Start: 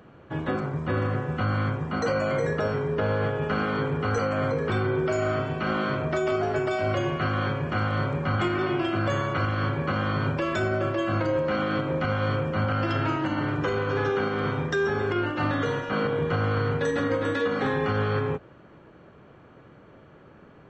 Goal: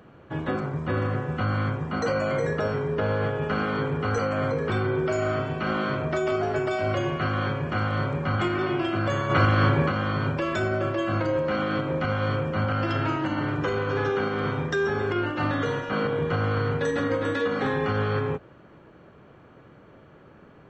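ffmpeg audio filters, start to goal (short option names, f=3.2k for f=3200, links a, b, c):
-filter_complex "[0:a]asplit=3[a][b][c];[a]afade=t=out:st=9.29:d=0.02[d];[b]acontrast=62,afade=t=in:st=9.29:d=0.02,afade=t=out:st=9.87:d=0.02[e];[c]afade=t=in:st=9.87:d=0.02[f];[d][e][f]amix=inputs=3:normalize=0"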